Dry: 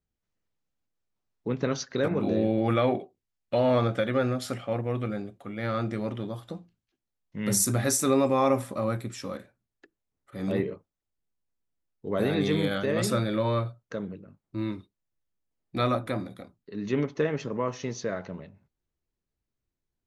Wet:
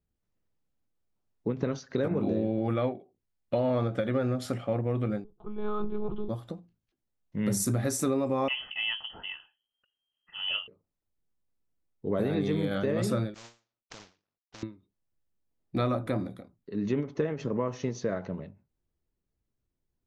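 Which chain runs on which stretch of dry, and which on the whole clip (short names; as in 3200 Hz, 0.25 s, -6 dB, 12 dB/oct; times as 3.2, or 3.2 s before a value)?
5.24–6.29 monotone LPC vocoder at 8 kHz 210 Hz + fixed phaser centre 390 Hz, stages 8 + mismatched tape noise reduction decoder only
8.48–10.68 Butterworth band-stop 910 Hz, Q 3 + inverted band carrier 3200 Hz
13.34–14.63 CVSD 32 kbps + compressor 2:1, threshold -36 dBFS + spectral compressor 10:1
whole clip: tilt shelf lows +4 dB; compressor, threshold -24 dBFS; ending taper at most 180 dB/s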